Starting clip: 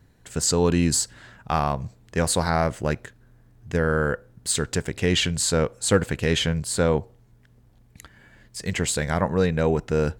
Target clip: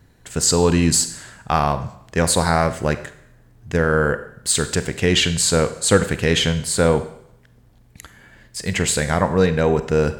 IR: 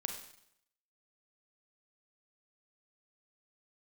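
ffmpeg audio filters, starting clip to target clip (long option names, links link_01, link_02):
-filter_complex "[0:a]asplit=2[link_01][link_02];[1:a]atrim=start_sample=2205,lowshelf=frequency=380:gain=-5[link_03];[link_02][link_03]afir=irnorm=-1:irlink=0,volume=-0.5dB[link_04];[link_01][link_04]amix=inputs=2:normalize=0"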